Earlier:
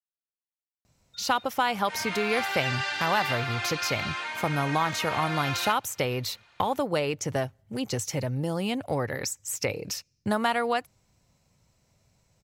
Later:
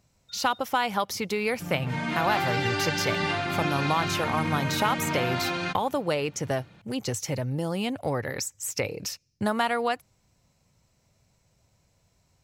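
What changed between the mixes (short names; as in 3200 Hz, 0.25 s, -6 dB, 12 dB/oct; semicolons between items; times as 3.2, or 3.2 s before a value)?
speech: entry -0.85 s; background: remove HPF 860 Hz 12 dB/oct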